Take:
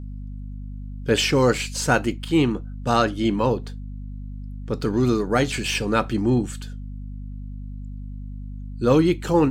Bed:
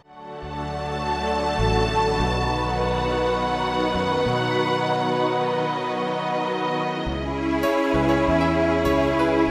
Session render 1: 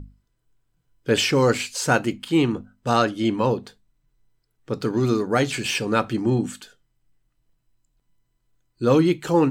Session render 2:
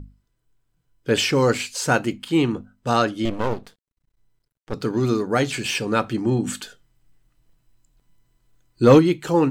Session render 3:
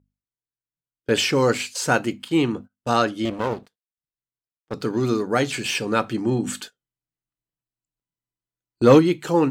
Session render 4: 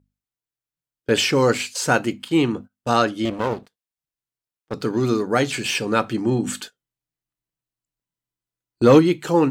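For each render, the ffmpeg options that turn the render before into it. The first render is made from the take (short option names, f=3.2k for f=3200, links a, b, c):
-af "bandreject=f=50:t=h:w=6,bandreject=f=100:t=h:w=6,bandreject=f=150:t=h:w=6,bandreject=f=200:t=h:w=6,bandreject=f=250:t=h:w=6"
-filter_complex "[0:a]asettb=1/sr,asplit=3[a][b][c];[a]atrim=end=3.254[d];[b]atrim=start=3.25:end=4.74,asetpts=PTS-STARTPTS,afade=t=in:d=0.004:c=qsin,afade=t=out:st=1.486:d=0.004:c=qsin,aeval=exprs='max(val(0),0)':c=same[e];[c]atrim=start=4.736[f];[d][e]acrossfade=d=0.004:c1=hsin:c2=qsin[g];[g][f]acrossfade=d=0.004:c1=qsin:c2=hsin,asplit=3[h][i][j];[h]afade=t=out:st=6.46:d=0.02[k];[i]acontrast=87,afade=t=in:st=6.46:d=0.02,afade=t=out:st=8.98:d=0.02[l];[j]afade=t=in:st=8.98:d=0.02[m];[k][l][m]amix=inputs=3:normalize=0"
-af "highpass=f=120:p=1,agate=range=-24dB:threshold=-36dB:ratio=16:detection=peak"
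-af "volume=1.5dB,alimiter=limit=-3dB:level=0:latency=1"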